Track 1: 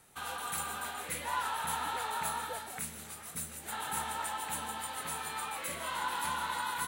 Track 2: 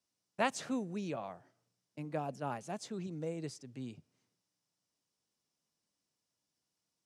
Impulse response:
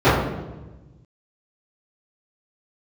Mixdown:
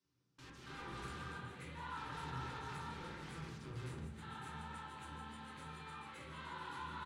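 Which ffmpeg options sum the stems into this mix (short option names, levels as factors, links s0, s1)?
-filter_complex "[0:a]adelay=500,volume=0.224,asplit=2[s0][s1];[s1]volume=0.0708[s2];[1:a]acompressor=threshold=0.00708:ratio=5,aeval=exprs='(mod(355*val(0)+1,2)-1)/355':c=same,volume=0.944,asplit=2[s3][s4];[s4]volume=0.112[s5];[2:a]atrim=start_sample=2205[s6];[s2][s5]amix=inputs=2:normalize=0[s7];[s7][s6]afir=irnorm=-1:irlink=0[s8];[s0][s3][s8]amix=inputs=3:normalize=0,lowpass=4700,equalizer=f=670:w=1.5:g=-13"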